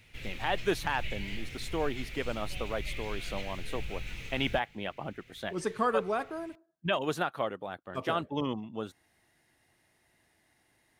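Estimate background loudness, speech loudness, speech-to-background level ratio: -42.0 LUFS, -34.5 LUFS, 7.5 dB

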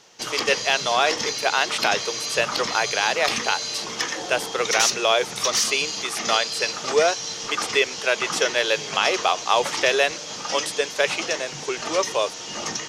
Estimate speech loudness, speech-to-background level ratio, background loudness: -23.5 LUFS, 3.0 dB, -26.5 LUFS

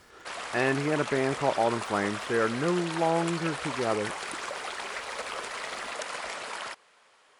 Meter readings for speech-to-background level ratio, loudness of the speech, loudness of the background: 6.0 dB, -29.0 LUFS, -35.0 LUFS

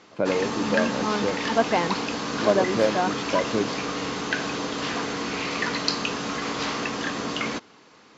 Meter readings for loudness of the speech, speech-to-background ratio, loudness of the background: -25.5 LUFS, 2.5 dB, -28.0 LUFS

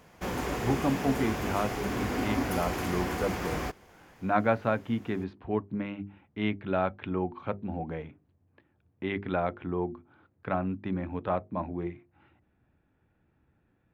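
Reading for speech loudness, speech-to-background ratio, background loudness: -32.5 LUFS, 0.0 dB, -32.5 LUFS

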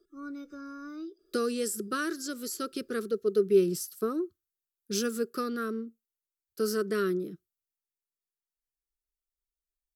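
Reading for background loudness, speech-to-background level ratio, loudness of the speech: -42.5 LUFS, 11.5 dB, -31.0 LUFS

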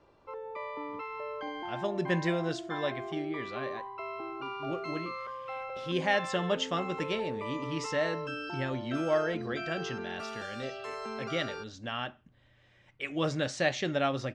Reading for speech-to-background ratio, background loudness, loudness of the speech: 5.0 dB, -39.0 LUFS, -34.0 LUFS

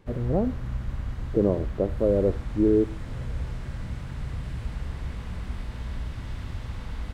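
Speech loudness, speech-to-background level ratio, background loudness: -25.5 LUFS, 10.0 dB, -35.5 LUFS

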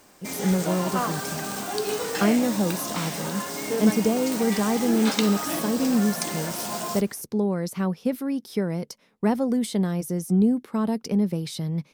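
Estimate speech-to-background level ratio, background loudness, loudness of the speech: 3.5 dB, -29.0 LUFS, -25.5 LUFS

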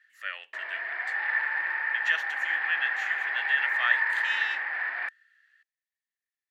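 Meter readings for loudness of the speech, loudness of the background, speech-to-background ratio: -31.0 LUFS, -28.0 LUFS, -3.0 dB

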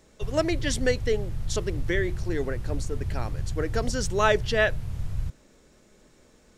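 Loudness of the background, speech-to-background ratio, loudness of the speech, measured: -34.5 LUFS, 6.5 dB, -28.0 LUFS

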